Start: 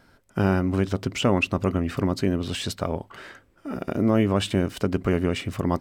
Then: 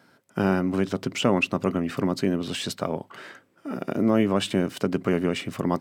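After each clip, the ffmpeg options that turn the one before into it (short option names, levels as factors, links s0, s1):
-af "highpass=f=130:w=0.5412,highpass=f=130:w=1.3066"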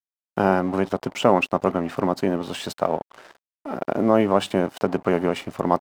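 -af "aeval=exprs='sgn(val(0))*max(abs(val(0))-0.00794,0)':c=same,equalizer=f=770:t=o:w=1.5:g=11.5,volume=0.891"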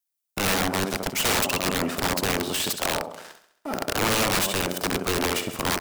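-af "aecho=1:1:67|134|201|268|335|402:0.299|0.161|0.0871|0.047|0.0254|0.0137,crystalizer=i=3:c=0,aeval=exprs='(mod(6.68*val(0)+1,2)-1)/6.68':c=same"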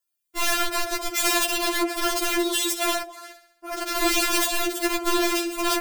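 -af "afftfilt=real='re*4*eq(mod(b,16),0)':imag='im*4*eq(mod(b,16),0)':win_size=2048:overlap=0.75,volume=1.58"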